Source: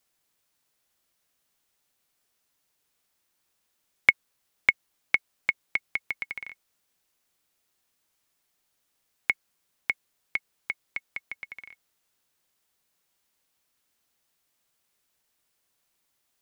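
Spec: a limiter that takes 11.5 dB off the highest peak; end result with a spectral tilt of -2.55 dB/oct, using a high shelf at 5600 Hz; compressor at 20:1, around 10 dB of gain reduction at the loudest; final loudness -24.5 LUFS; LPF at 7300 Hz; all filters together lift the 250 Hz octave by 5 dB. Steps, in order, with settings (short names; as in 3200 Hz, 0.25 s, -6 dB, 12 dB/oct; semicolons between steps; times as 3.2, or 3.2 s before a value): LPF 7300 Hz; bell 250 Hz +6.5 dB; high shelf 5600 Hz -5 dB; compressor 20:1, threshold -26 dBFS; gain +16.5 dB; limiter -0.5 dBFS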